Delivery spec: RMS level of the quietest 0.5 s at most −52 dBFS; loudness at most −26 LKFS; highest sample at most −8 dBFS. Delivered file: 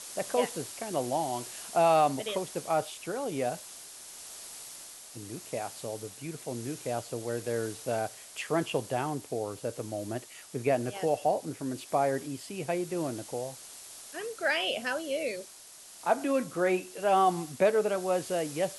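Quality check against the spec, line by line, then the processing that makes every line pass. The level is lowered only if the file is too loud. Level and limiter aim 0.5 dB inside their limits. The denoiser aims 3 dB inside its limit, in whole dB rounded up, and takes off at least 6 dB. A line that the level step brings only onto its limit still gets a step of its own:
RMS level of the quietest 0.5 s −50 dBFS: out of spec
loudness −31.0 LKFS: in spec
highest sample −12.5 dBFS: in spec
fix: broadband denoise 6 dB, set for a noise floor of −50 dBFS

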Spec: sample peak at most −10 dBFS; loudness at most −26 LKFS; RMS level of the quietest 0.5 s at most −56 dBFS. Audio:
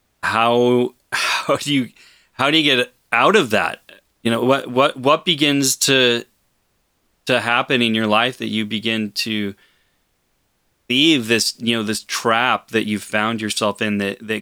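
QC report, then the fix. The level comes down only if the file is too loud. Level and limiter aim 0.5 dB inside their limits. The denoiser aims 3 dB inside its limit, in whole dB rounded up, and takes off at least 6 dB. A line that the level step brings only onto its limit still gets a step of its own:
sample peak −1.5 dBFS: out of spec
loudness −17.5 LKFS: out of spec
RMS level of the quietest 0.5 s −66 dBFS: in spec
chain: level −9 dB

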